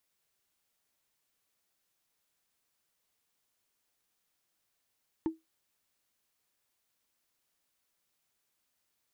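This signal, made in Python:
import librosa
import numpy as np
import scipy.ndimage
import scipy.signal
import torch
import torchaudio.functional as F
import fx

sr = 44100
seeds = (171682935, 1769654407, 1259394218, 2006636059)

y = fx.strike_wood(sr, length_s=0.45, level_db=-23.5, body='bar', hz=322.0, decay_s=0.18, tilt_db=12.0, modes=5)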